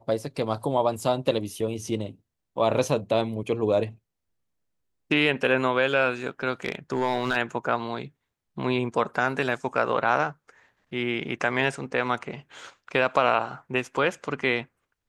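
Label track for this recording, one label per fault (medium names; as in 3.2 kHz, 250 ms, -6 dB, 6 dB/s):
6.650000	7.370000	clipped -18 dBFS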